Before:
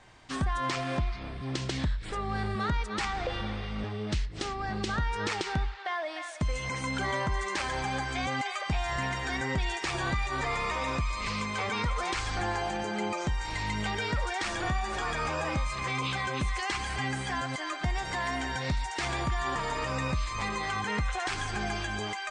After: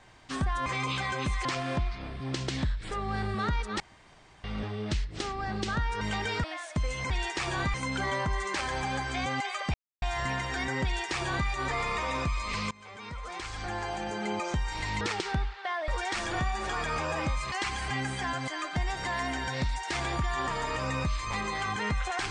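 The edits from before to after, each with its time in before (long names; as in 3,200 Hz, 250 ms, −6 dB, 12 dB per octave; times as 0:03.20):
0:03.01–0:03.65: fill with room tone
0:05.22–0:06.09: swap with 0:13.74–0:14.17
0:08.75: splice in silence 0.28 s
0:09.57–0:10.21: duplicate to 0:06.75
0:11.44–0:13.13: fade in, from −22.5 dB
0:15.81–0:16.60: move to 0:00.66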